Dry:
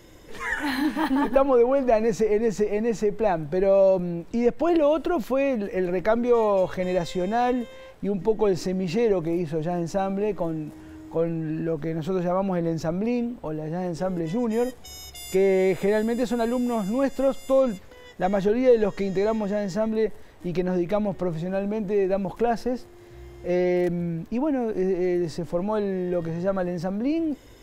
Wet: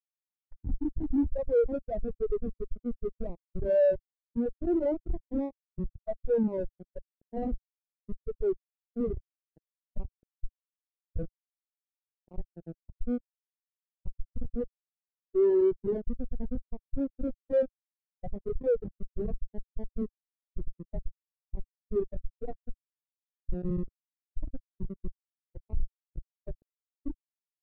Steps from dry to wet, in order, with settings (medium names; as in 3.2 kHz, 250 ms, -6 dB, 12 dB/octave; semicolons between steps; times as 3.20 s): Schmitt trigger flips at -19 dBFS; bit crusher 7-bit; spectral contrast expander 2.5:1